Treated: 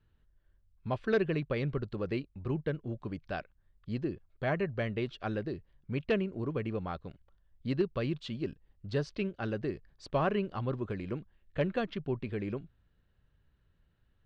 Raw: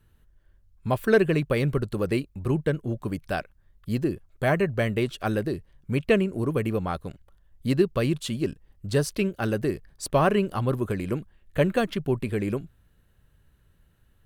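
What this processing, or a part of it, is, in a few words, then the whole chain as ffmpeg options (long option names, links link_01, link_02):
synthesiser wavefolder: -af "aeval=exprs='0.282*(abs(mod(val(0)/0.282+3,4)-2)-1)':channel_layout=same,lowpass=frequency=4800:width=0.5412,lowpass=frequency=4800:width=1.3066,volume=-8.5dB"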